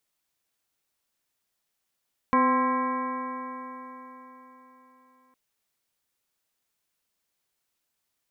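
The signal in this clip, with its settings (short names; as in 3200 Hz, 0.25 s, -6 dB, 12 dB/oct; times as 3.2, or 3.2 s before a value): stretched partials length 3.01 s, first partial 254 Hz, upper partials -5/-10.5/4/-13/-11/-13.5/-12.5 dB, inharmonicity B 0.0037, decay 4.14 s, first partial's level -23 dB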